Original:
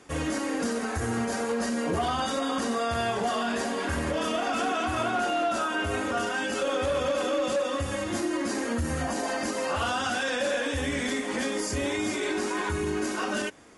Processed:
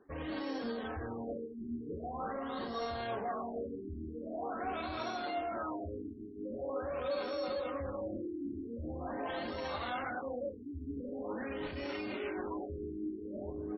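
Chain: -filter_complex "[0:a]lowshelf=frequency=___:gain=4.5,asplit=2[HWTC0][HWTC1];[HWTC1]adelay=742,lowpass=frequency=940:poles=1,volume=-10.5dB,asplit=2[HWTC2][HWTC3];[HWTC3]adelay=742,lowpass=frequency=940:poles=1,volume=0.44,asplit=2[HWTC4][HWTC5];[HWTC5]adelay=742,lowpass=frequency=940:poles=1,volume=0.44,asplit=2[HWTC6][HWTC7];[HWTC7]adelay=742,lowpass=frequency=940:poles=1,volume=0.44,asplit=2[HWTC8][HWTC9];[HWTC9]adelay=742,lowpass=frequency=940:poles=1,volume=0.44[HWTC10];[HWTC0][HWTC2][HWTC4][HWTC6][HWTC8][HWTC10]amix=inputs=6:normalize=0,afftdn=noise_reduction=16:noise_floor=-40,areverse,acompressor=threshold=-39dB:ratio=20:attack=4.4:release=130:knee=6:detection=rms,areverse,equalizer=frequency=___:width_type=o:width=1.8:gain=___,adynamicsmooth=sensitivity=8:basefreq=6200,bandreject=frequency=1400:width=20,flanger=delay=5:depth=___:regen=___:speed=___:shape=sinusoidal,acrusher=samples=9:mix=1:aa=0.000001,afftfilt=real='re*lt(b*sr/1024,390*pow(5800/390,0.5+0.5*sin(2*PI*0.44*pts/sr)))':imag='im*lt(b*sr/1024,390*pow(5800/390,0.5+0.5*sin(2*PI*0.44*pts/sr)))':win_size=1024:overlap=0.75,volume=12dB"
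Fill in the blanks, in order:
340, 140, -9, 5.7, 70, 0.41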